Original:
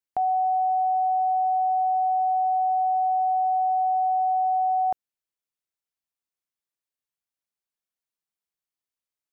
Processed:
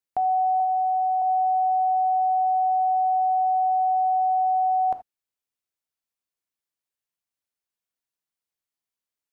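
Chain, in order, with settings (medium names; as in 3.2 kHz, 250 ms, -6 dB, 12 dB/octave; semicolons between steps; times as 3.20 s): 0.60–1.22 s: tilt EQ +3 dB/octave; gated-style reverb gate 100 ms flat, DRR 9 dB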